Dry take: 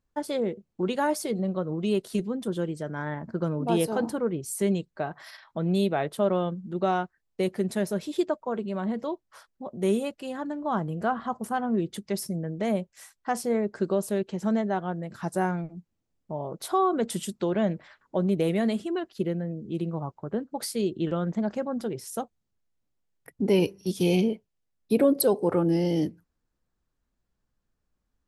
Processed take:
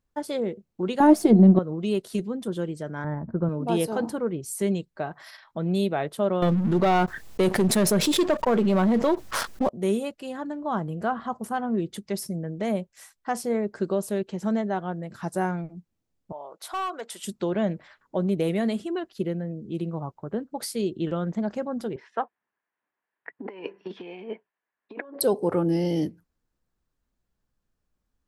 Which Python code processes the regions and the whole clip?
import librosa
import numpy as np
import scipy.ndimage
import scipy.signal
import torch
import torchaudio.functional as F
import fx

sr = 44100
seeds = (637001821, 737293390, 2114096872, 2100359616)

y = fx.chain(x, sr, fx.halfwave_gain(db=-3.0),
    fx.small_body(hz=(210.0, 320.0, 680.0), ring_ms=30, db=17), at=(1.0, 1.59))
y = fx.chain(y, sr, fx.lowpass(hz=1300.0, slope=12),
    fx.low_shelf(hz=140.0, db=11.5), at=(3.04, 3.49))
y = fx.chain(y, sr, fx.halfwave_gain(db=-3.0),
    fx.leveller(passes=2),
    fx.env_flatten(amount_pct=70), at=(6.42, 9.69))
y = fx.chain(y, sr, fx.highpass(hz=760.0, slope=12),
    fx.high_shelf(hz=3700.0, db=-4.0),
    fx.clip_hard(threshold_db=-25.5), at=(16.32, 17.24))
y = fx.chain(y, sr, fx.over_compress(threshold_db=-27.0, ratio=-0.5),
    fx.cabinet(low_hz=470.0, low_slope=12, high_hz=2600.0, hz=(530.0, 1000.0, 1700.0), db=(-4, 7, 10)), at=(21.96, 25.21))